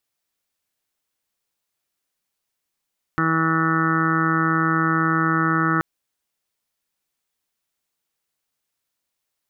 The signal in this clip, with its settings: steady additive tone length 2.63 s, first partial 162 Hz, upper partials 0.5/-12/-19/-11.5/-17/-3/1/-2/-19.5/-5/-16.5 dB, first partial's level -23.5 dB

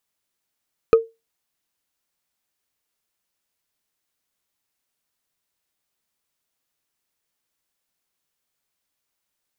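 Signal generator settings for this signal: wood hit, lowest mode 454 Hz, decay 0.22 s, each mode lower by 9.5 dB, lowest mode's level -5 dB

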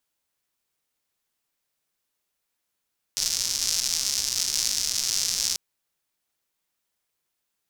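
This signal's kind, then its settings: rain from filtered ticks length 2.39 s, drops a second 220, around 5500 Hz, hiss -20 dB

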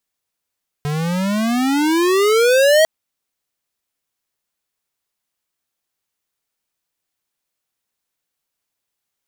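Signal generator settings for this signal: gliding synth tone square, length 2.00 s, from 144 Hz, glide +26 st, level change +10 dB, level -11 dB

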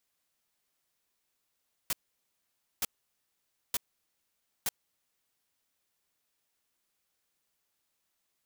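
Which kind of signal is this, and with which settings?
noise bursts white, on 0.03 s, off 0.89 s, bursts 4, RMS -30 dBFS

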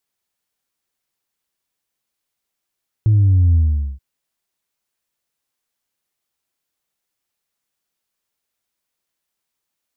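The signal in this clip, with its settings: sub drop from 110 Hz, over 0.93 s, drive 0.5 dB, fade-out 0.44 s, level -10 dB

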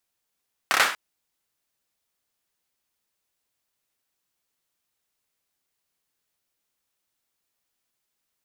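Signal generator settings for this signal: hand clap length 0.24 s, apart 29 ms, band 1400 Hz, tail 0.43 s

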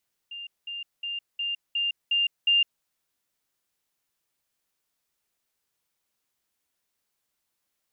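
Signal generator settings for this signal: level ladder 2800 Hz -35.5 dBFS, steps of 3 dB, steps 7, 0.16 s 0.20 s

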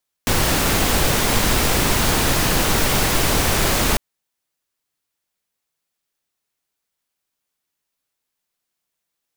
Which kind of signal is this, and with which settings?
noise pink, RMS -17.5 dBFS 3.70 s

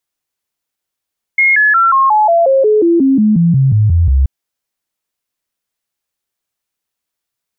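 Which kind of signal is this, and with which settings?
stepped sine 2150 Hz down, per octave 3, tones 16, 0.18 s, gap 0.00 s -6.5 dBFS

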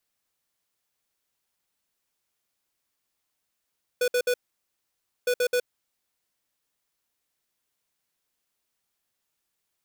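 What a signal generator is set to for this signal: beep pattern square 493 Hz, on 0.07 s, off 0.06 s, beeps 3, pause 0.93 s, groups 2, -23 dBFS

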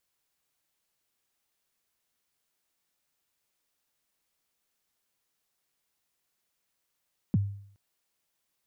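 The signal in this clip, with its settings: kick drum length 0.42 s, from 250 Hz, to 100 Hz, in 28 ms, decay 0.61 s, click off, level -18.5 dB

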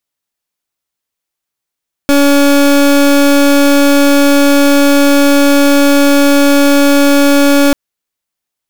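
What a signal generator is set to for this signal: pulse 283 Hz, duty 29% -7 dBFS 5.64 s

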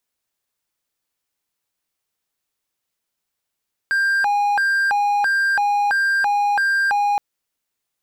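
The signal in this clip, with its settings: siren hi-lo 819–1590 Hz 1.5/s triangle -13.5 dBFS 3.27 s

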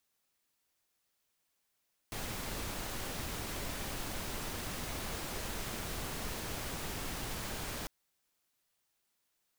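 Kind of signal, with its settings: noise pink, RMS -39.5 dBFS 5.75 s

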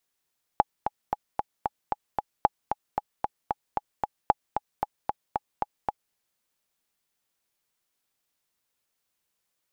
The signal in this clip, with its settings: metronome 227 bpm, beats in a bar 7, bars 3, 836 Hz, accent 7.5 dB -5 dBFS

